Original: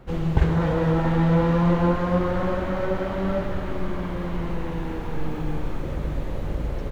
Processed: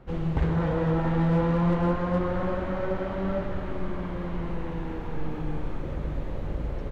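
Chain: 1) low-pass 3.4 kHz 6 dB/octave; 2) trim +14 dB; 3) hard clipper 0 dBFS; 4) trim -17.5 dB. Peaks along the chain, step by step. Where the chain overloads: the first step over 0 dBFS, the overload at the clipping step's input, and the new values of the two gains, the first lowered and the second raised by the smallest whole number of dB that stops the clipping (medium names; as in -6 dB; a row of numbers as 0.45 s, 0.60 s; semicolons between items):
-4.5 dBFS, +9.5 dBFS, 0.0 dBFS, -17.5 dBFS; step 2, 9.5 dB; step 2 +4 dB, step 4 -7.5 dB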